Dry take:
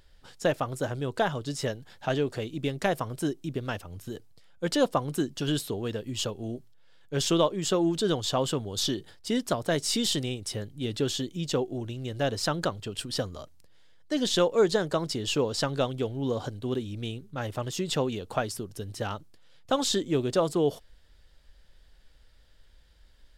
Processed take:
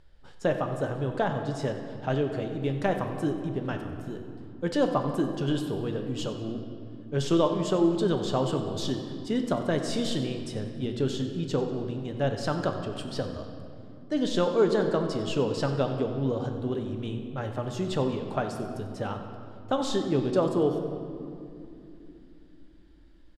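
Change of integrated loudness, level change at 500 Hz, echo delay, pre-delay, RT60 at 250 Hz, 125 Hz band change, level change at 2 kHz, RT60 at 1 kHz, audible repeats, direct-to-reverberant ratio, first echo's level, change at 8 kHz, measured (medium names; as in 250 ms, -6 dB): 0.0 dB, +1.0 dB, 94 ms, 5 ms, 5.0 s, +2.0 dB, -2.5 dB, 2.6 s, 1, 4.5 dB, -15.0 dB, -9.5 dB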